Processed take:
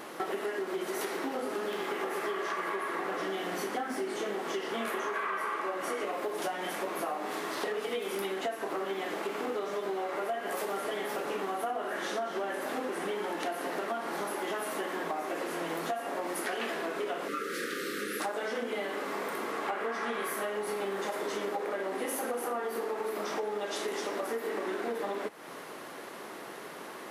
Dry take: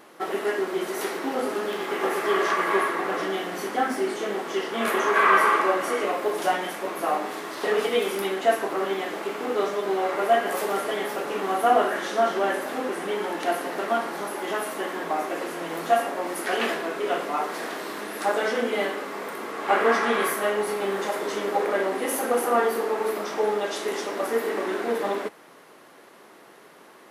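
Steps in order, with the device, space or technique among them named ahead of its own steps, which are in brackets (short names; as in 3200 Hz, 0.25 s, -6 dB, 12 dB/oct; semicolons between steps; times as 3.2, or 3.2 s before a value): 17.28–18.2 Chebyshev band-stop 550–1200 Hz, order 5; serial compression, leveller first (compressor 2.5:1, threshold -26 dBFS, peak gain reduction 8.5 dB; compressor 4:1, threshold -40 dBFS, peak gain reduction 15.5 dB); gain +6.5 dB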